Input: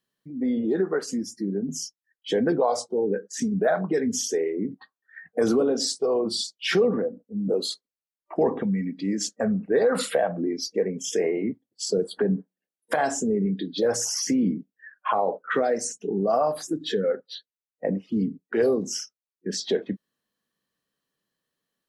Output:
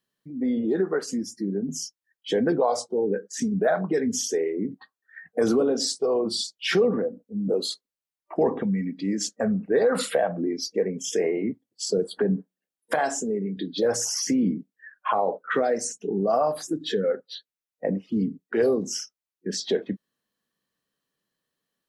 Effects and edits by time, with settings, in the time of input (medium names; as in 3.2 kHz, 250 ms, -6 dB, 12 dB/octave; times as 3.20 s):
12.99–13.57 s: high-pass 310 Hz 6 dB/octave